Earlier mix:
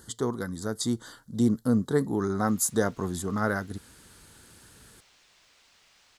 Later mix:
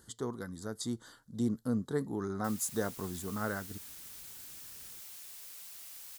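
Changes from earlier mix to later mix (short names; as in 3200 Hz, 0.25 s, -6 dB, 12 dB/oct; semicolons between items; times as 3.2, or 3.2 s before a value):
speech -8.5 dB; background: remove air absorption 150 m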